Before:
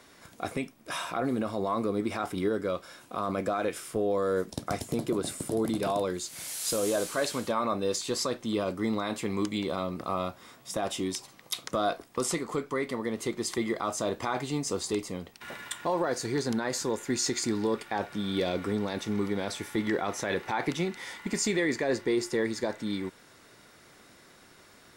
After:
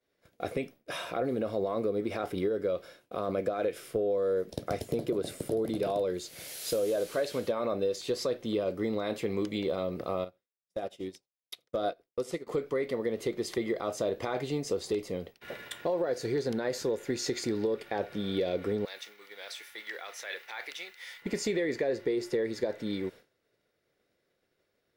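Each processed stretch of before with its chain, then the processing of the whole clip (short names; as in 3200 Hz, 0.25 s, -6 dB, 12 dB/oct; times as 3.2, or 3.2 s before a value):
10.24–12.47 notch 1100 Hz, Q 14 + echo 84 ms -18 dB + upward expander 2.5:1, over -40 dBFS
18.85–21.22 HPF 1500 Hz + requantised 10-bit, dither none
whole clip: expander -42 dBFS; graphic EQ 250/500/1000/8000 Hz -4/+9/-9/-10 dB; compressor, threshold -26 dBFS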